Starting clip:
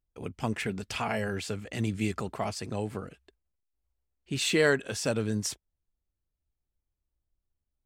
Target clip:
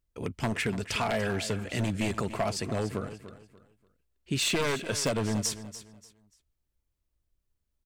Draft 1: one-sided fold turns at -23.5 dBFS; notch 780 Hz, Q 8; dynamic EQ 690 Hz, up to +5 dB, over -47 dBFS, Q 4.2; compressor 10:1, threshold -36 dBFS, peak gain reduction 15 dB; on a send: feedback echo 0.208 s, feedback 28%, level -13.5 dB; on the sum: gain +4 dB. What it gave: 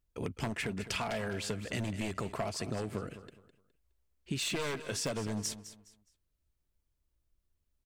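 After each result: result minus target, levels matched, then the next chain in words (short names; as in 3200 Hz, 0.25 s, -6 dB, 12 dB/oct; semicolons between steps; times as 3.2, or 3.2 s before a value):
compressor: peak gain reduction +7 dB; echo 84 ms early
one-sided fold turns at -23.5 dBFS; notch 780 Hz, Q 8; dynamic EQ 690 Hz, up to +5 dB, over -47 dBFS, Q 4.2; compressor 10:1, threshold -28 dBFS, peak gain reduction 7.5 dB; on a send: feedback echo 0.208 s, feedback 28%, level -13.5 dB; on the sum: gain +4 dB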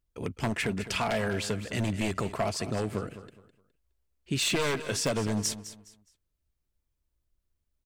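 echo 84 ms early
one-sided fold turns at -23.5 dBFS; notch 780 Hz, Q 8; dynamic EQ 690 Hz, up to +5 dB, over -47 dBFS, Q 4.2; compressor 10:1, threshold -28 dBFS, peak gain reduction 7.5 dB; on a send: feedback echo 0.292 s, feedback 28%, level -13.5 dB; on the sum: gain +4 dB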